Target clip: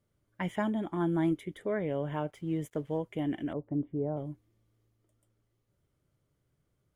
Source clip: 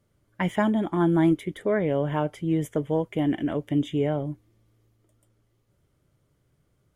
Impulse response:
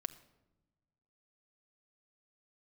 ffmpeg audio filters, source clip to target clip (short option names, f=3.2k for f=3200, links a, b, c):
-filter_complex "[0:a]asettb=1/sr,asplit=3[a][b][c];[a]atrim=end=2.304[d];[b]atrim=start=2.3:end=2.98,asetpts=PTS-STARTPTS,afade=t=in:d=0.004:c=qsin,afade=t=out:st=0.676:d=0.004:c=qsin,aeval=exprs='sgn(val(0))*max(abs(val(0))-0.00126,0)':c=same[e];[c]atrim=start=2.976[f];[d][e]acrossfade=d=0.004:c1=hsin:c2=qsin[g];[g][f]acrossfade=d=0.004:c1=qsin:c2=hsin,asettb=1/sr,asplit=3[h][i][j];[h]atrim=end=3.534[k];[i]atrim=start=3.53:end=4.17,asetpts=PTS-STARTPTS,afade=t=in:d=0.004:c=qsin,afade=t=out:st=0.636:d=0.004:c=qsin,lowpass=f=1.1k:w=0.5412,lowpass=f=1.1k:w=1.3066[l];[j]atrim=start=4.166[m];[k][l]acrossfade=d=0.004:c1=hsin:c2=qsin[n];[n][m]acrossfade=d=0.004:c1=qsin:c2=hsin,volume=-8dB"